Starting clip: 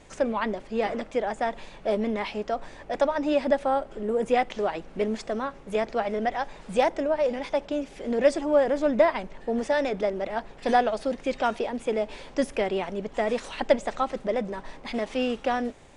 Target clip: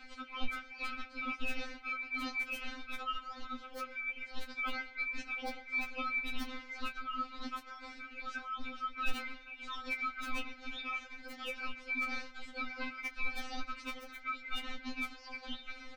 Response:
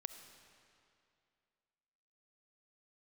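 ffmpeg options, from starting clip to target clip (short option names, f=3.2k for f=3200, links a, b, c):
-filter_complex "[0:a]highpass=f=160:w=0.5412,highpass=f=160:w=1.3066,equalizer=f=770:t=o:w=1.1:g=-11.5,asplit=2[a][b];[b]asoftclip=type=tanh:threshold=-27dB,volume=-5dB[c];[a][c]amix=inputs=2:normalize=0,alimiter=limit=-21.5dB:level=0:latency=1:release=94,aecho=1:1:127|254:0.112|0.0191,areverse,acompressor=threshold=-38dB:ratio=12,areverse,aeval=exprs='val(0)*sin(2*PI*1900*n/s)':c=same,lowpass=f=6.1k:w=0.5412,lowpass=f=6.1k:w=1.3066,aeval=exprs='(mod(37.6*val(0)+1,2)-1)/37.6':c=same,bass=f=250:g=15,treble=f=4k:g=-8,asplit=2[d][e];[e]adelay=21,volume=-11dB[f];[d][f]amix=inputs=2:normalize=0,afftfilt=real='re*3.46*eq(mod(b,12),0)':imag='im*3.46*eq(mod(b,12),0)':win_size=2048:overlap=0.75,volume=7.5dB"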